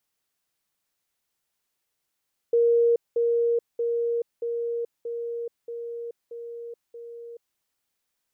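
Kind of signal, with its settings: level ladder 469 Hz -16.5 dBFS, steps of -3 dB, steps 8, 0.43 s 0.20 s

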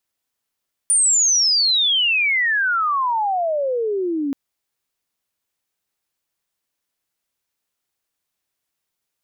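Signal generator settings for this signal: sweep logarithmic 9.4 kHz -> 270 Hz -12.5 dBFS -> -19.5 dBFS 3.43 s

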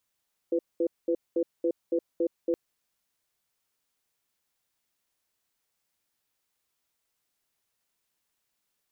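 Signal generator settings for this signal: cadence 340 Hz, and 502 Hz, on 0.07 s, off 0.21 s, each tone -25.5 dBFS 2.02 s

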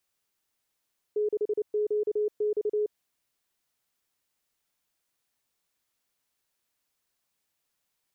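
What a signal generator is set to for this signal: Morse "6QX" 29 wpm 421 Hz -23.5 dBFS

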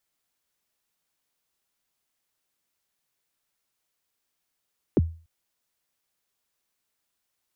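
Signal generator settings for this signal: kick drum length 0.29 s, from 470 Hz, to 82 Hz, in 30 ms, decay 0.37 s, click off, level -13 dB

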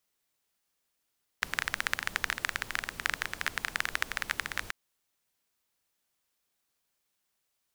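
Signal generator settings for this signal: rain from filtered ticks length 3.29 s, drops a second 17, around 1.7 kHz, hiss -12 dB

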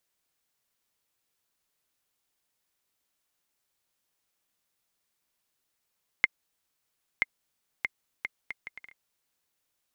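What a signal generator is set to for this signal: bouncing ball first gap 0.98 s, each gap 0.64, 2.11 kHz, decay 28 ms -7 dBFS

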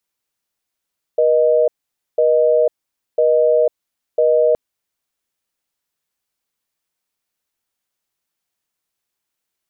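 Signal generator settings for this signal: call progress tone busy tone, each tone -13.5 dBFS 3.37 s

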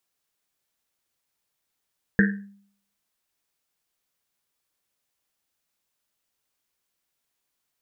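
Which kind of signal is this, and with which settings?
Risset drum, pitch 200 Hz, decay 0.59 s, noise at 1.7 kHz, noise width 330 Hz, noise 35%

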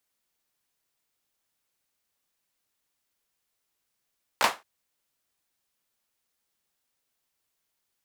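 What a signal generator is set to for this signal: hand clap length 0.22 s, bursts 3, apart 15 ms, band 950 Hz, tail 0.23 s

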